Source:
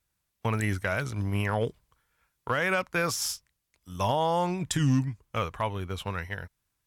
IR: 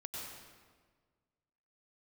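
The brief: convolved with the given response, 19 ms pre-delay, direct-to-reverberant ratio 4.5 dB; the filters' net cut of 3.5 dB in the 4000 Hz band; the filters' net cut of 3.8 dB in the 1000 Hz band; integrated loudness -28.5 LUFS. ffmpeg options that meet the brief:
-filter_complex "[0:a]equalizer=f=1k:t=o:g=-4.5,equalizer=f=4k:t=o:g=-5,asplit=2[a][b];[1:a]atrim=start_sample=2205,adelay=19[c];[b][c]afir=irnorm=-1:irlink=0,volume=-3.5dB[d];[a][d]amix=inputs=2:normalize=0,volume=0.5dB"

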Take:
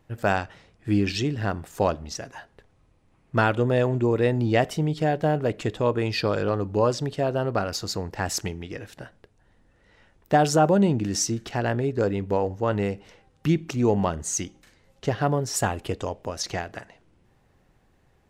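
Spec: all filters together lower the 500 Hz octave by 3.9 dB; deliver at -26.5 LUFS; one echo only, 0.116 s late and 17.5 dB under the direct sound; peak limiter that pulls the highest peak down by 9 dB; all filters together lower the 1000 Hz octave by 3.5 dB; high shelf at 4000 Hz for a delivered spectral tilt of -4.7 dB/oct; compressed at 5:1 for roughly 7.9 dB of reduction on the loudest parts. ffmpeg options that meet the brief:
-af "equalizer=f=500:t=o:g=-4,equalizer=f=1k:t=o:g=-3.5,highshelf=f=4k:g=5.5,acompressor=threshold=-26dB:ratio=5,alimiter=level_in=1dB:limit=-24dB:level=0:latency=1,volume=-1dB,aecho=1:1:116:0.133,volume=8.5dB"

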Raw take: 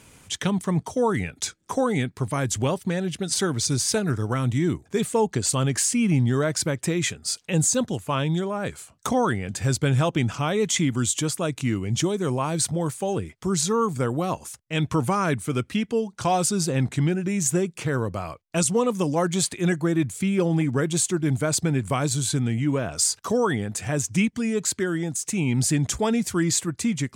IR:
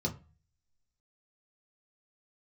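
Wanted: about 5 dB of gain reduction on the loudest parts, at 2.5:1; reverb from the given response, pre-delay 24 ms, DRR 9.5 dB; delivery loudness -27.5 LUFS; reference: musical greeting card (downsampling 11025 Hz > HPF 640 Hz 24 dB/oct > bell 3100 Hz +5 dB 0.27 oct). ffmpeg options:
-filter_complex "[0:a]acompressor=threshold=-25dB:ratio=2.5,asplit=2[a][b];[1:a]atrim=start_sample=2205,adelay=24[c];[b][c]afir=irnorm=-1:irlink=0,volume=-13.5dB[d];[a][d]amix=inputs=2:normalize=0,aresample=11025,aresample=44100,highpass=f=640:w=0.5412,highpass=f=640:w=1.3066,equalizer=f=3.1k:t=o:w=0.27:g=5,volume=7.5dB"

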